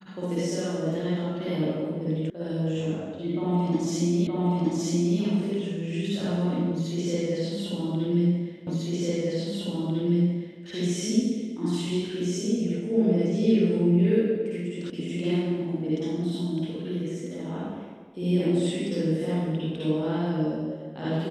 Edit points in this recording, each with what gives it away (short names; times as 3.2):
2.3 sound cut off
4.27 repeat of the last 0.92 s
8.67 repeat of the last 1.95 s
14.9 sound cut off